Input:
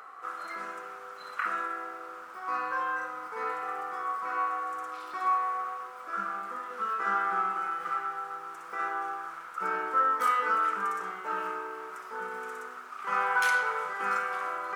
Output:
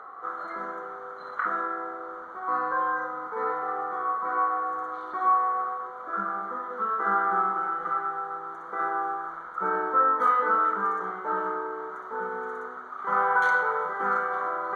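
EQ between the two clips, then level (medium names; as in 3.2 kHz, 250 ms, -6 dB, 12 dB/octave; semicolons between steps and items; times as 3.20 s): boxcar filter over 17 samples; +7.5 dB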